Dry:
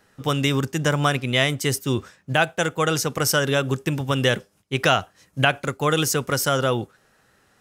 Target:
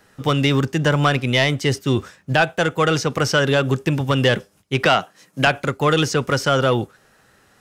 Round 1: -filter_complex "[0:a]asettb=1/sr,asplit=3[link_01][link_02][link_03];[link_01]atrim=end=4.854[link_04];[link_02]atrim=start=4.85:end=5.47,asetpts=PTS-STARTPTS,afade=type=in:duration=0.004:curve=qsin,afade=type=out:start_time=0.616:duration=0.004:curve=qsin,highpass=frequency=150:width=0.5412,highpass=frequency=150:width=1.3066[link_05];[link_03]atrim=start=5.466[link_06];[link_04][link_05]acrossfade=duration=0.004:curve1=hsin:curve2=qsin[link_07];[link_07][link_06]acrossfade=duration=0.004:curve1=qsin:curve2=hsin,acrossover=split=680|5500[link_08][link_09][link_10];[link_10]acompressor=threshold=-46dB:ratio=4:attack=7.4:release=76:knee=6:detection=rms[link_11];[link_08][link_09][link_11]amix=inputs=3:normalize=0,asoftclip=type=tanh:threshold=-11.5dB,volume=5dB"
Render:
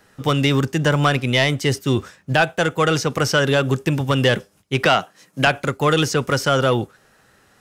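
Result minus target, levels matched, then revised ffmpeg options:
downward compressor: peak gain reduction −5 dB
-filter_complex "[0:a]asettb=1/sr,asplit=3[link_01][link_02][link_03];[link_01]atrim=end=4.854[link_04];[link_02]atrim=start=4.85:end=5.47,asetpts=PTS-STARTPTS,afade=type=in:duration=0.004:curve=qsin,afade=type=out:start_time=0.616:duration=0.004:curve=qsin,highpass=frequency=150:width=0.5412,highpass=frequency=150:width=1.3066[link_05];[link_03]atrim=start=5.466[link_06];[link_04][link_05]acrossfade=duration=0.004:curve1=hsin:curve2=qsin[link_07];[link_07][link_06]acrossfade=duration=0.004:curve1=qsin:curve2=hsin,acrossover=split=680|5500[link_08][link_09][link_10];[link_10]acompressor=threshold=-52.5dB:ratio=4:attack=7.4:release=76:knee=6:detection=rms[link_11];[link_08][link_09][link_11]amix=inputs=3:normalize=0,asoftclip=type=tanh:threshold=-11.5dB,volume=5dB"

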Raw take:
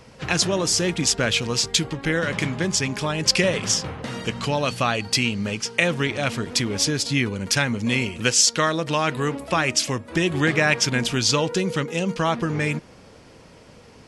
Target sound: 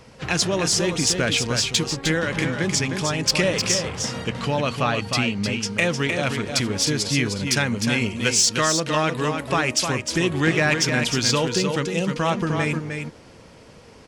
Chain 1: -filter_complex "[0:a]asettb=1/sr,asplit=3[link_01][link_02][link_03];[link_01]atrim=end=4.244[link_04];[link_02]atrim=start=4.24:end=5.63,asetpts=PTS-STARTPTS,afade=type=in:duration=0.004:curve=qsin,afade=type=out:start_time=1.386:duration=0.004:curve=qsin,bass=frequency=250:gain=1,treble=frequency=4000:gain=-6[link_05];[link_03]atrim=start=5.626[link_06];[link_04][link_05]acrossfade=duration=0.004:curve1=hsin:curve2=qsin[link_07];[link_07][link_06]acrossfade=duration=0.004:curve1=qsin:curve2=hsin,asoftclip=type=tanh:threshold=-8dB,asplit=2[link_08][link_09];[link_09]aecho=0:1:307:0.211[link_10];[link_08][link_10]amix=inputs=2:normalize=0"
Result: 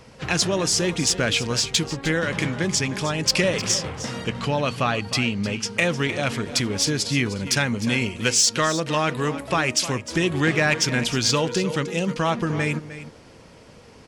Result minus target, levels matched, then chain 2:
echo-to-direct −7.5 dB
-filter_complex "[0:a]asettb=1/sr,asplit=3[link_01][link_02][link_03];[link_01]atrim=end=4.244[link_04];[link_02]atrim=start=4.24:end=5.63,asetpts=PTS-STARTPTS,afade=type=in:duration=0.004:curve=qsin,afade=type=out:start_time=1.386:duration=0.004:curve=qsin,bass=frequency=250:gain=1,treble=frequency=4000:gain=-6[link_05];[link_03]atrim=start=5.626[link_06];[link_04][link_05]acrossfade=duration=0.004:curve1=hsin:curve2=qsin[link_07];[link_07][link_06]acrossfade=duration=0.004:curve1=qsin:curve2=hsin,asoftclip=type=tanh:threshold=-8dB,asplit=2[link_08][link_09];[link_09]aecho=0:1:307:0.501[link_10];[link_08][link_10]amix=inputs=2:normalize=0"

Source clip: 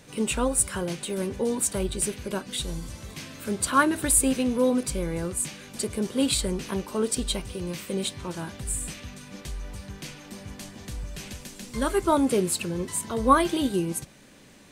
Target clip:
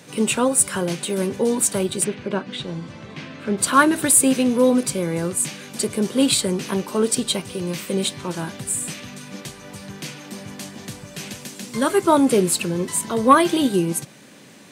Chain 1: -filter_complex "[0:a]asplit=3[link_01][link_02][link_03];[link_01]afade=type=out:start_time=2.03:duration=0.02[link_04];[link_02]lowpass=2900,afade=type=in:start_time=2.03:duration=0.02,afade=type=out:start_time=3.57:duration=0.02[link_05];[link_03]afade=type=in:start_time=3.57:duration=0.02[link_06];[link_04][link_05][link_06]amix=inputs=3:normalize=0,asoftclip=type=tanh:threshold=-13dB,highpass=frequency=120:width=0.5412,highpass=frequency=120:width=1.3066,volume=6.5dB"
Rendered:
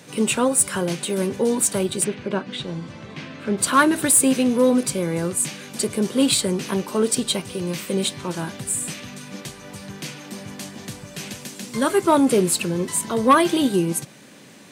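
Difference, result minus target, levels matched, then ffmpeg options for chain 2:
soft clipping: distortion +9 dB
-filter_complex "[0:a]asplit=3[link_01][link_02][link_03];[link_01]afade=type=out:start_time=2.03:duration=0.02[link_04];[link_02]lowpass=2900,afade=type=in:start_time=2.03:duration=0.02,afade=type=out:start_time=3.57:duration=0.02[link_05];[link_03]afade=type=in:start_time=3.57:duration=0.02[link_06];[link_04][link_05][link_06]amix=inputs=3:normalize=0,asoftclip=type=tanh:threshold=-7dB,highpass=frequency=120:width=0.5412,highpass=frequency=120:width=1.3066,volume=6.5dB"

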